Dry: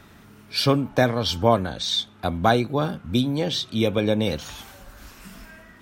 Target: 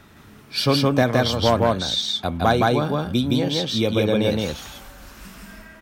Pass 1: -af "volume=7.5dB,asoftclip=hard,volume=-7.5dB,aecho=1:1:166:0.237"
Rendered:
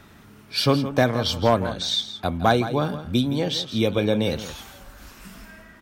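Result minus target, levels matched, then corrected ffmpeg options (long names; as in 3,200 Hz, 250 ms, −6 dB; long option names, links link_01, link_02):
echo-to-direct −11.5 dB
-af "volume=7.5dB,asoftclip=hard,volume=-7.5dB,aecho=1:1:166:0.891"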